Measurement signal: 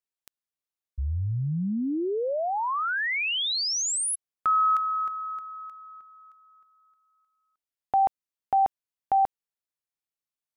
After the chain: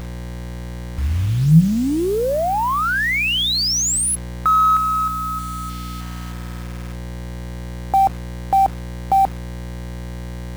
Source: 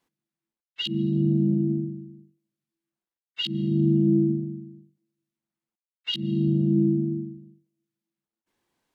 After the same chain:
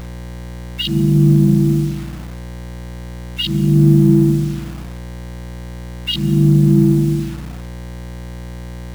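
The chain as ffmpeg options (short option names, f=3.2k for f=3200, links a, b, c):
-filter_complex "[0:a]afftfilt=real='re*gte(hypot(re,im),0.00501)':imag='im*gte(hypot(re,im),0.00501)':win_size=1024:overlap=0.75,aeval=exprs='val(0)+0.0126*(sin(2*PI*60*n/s)+sin(2*PI*2*60*n/s)/2+sin(2*PI*3*60*n/s)/3+sin(2*PI*4*60*n/s)/4+sin(2*PI*5*60*n/s)/5)':c=same,asplit=2[a][b];[b]asoftclip=type=tanh:threshold=-29dB,volume=-10dB[c];[a][c]amix=inputs=2:normalize=0,equalizer=f=160:w=7.3:g=14,acrusher=bits=6:mix=0:aa=0.000001,volume=6.5dB"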